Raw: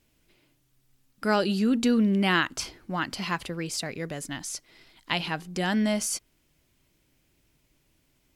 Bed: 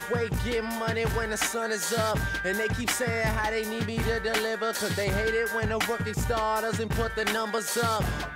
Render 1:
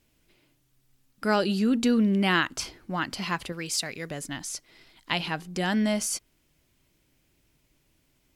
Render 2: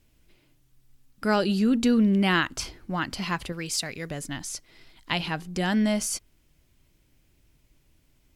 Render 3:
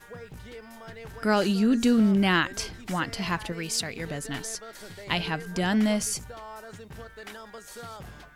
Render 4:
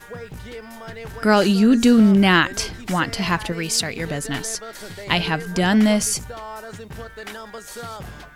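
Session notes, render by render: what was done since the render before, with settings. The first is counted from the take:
3.52–4.1 tilt shelf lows -4.5 dB, about 1300 Hz
low shelf 97 Hz +10.5 dB
add bed -15 dB
gain +7.5 dB

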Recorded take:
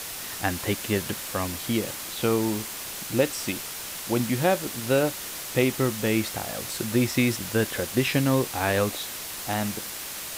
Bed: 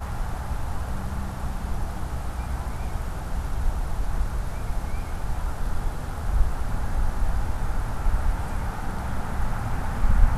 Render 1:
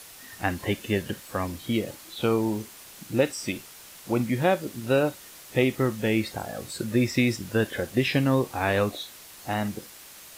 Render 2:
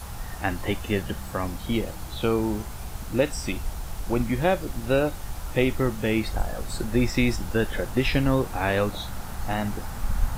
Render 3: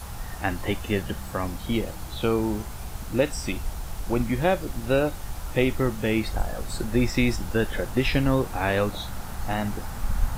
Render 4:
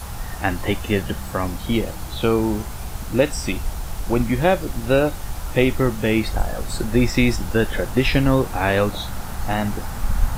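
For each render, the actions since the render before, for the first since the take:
noise print and reduce 11 dB
add bed -6.5 dB
nothing audible
gain +5 dB

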